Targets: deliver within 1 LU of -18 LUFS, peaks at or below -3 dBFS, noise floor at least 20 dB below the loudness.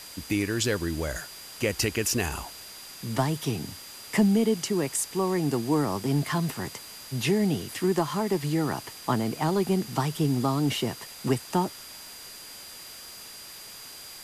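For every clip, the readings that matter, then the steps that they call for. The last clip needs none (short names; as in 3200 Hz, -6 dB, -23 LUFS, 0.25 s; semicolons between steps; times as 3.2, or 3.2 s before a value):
steady tone 4800 Hz; tone level -46 dBFS; noise floor -44 dBFS; noise floor target -48 dBFS; loudness -27.5 LUFS; peak -11.0 dBFS; loudness target -18.0 LUFS
-> notch 4800 Hz, Q 30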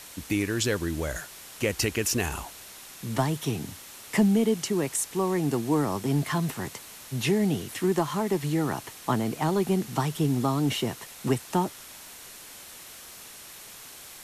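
steady tone none; noise floor -46 dBFS; noise floor target -48 dBFS
-> denoiser 6 dB, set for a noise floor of -46 dBFS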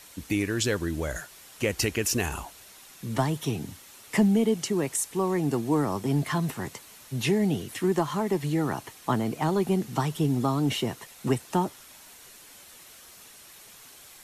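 noise floor -50 dBFS; loudness -27.5 LUFS; peak -11.5 dBFS; loudness target -18.0 LUFS
-> gain +9.5 dB; limiter -3 dBFS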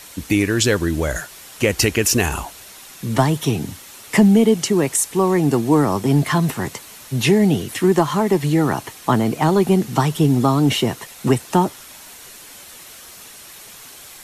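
loudness -18.0 LUFS; peak -3.0 dBFS; noise floor -41 dBFS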